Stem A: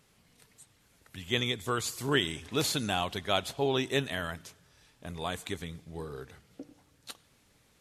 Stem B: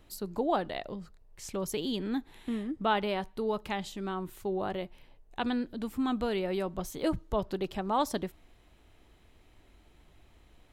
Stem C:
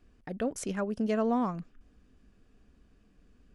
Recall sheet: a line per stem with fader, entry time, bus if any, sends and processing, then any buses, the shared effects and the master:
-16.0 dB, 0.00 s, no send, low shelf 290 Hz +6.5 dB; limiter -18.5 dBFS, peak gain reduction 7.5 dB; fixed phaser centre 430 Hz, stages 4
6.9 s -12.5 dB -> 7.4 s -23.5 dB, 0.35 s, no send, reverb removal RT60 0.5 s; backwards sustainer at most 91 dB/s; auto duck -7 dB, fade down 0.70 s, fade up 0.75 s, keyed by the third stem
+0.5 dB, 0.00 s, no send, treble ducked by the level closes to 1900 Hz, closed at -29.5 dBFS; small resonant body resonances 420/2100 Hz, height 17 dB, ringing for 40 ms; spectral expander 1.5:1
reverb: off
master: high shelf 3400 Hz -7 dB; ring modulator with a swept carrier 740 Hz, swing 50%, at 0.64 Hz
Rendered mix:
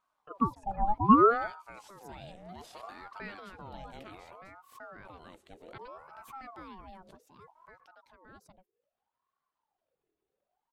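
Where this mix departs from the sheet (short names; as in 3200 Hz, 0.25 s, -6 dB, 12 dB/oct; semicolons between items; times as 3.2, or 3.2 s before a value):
stem A: missing fixed phaser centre 430 Hz, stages 4; stem C: missing treble ducked by the level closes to 1900 Hz, closed at -29.5 dBFS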